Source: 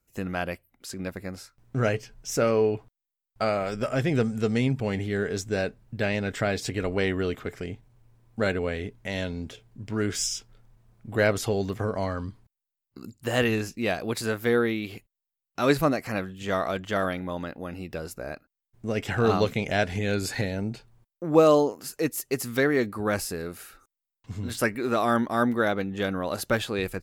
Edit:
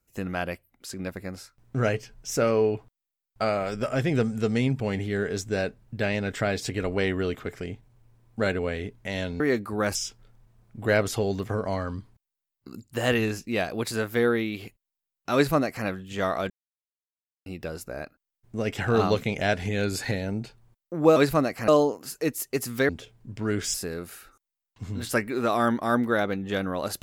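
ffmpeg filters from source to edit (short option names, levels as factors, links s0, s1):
-filter_complex "[0:a]asplit=9[s0][s1][s2][s3][s4][s5][s6][s7][s8];[s0]atrim=end=9.402[s9];[s1]atrim=start=22.668:end=23.222[s10];[s2]atrim=start=10.248:end=16.8,asetpts=PTS-STARTPTS,afade=t=out:st=6.548:d=0.004:c=hsin[s11];[s3]atrim=start=16.8:end=17.76,asetpts=PTS-STARTPTS,volume=0[s12];[s4]atrim=start=17.76:end=21.462,asetpts=PTS-STARTPTS,afade=t=in:d=0.004:c=hsin[s13];[s5]atrim=start=15.638:end=16.162[s14];[s6]atrim=start=21.458:end=22.672[s15];[s7]atrim=start=9.398:end=10.252[s16];[s8]atrim=start=23.218[s17];[s9][s10]acrossfade=d=0.004:c1=hsin:c2=hsin[s18];[s11][s12][s13]concat=n=3:v=0:a=1[s19];[s18][s19]acrossfade=d=0.004:c1=hsin:c2=hsin[s20];[s20][s14]acrossfade=d=0.004:c1=hsin:c2=hsin[s21];[s21][s15]acrossfade=d=0.004:c1=hsin:c2=hsin[s22];[s22][s16]acrossfade=d=0.004:c1=hsin:c2=hsin[s23];[s23][s17]acrossfade=d=0.004:c1=hsin:c2=hsin"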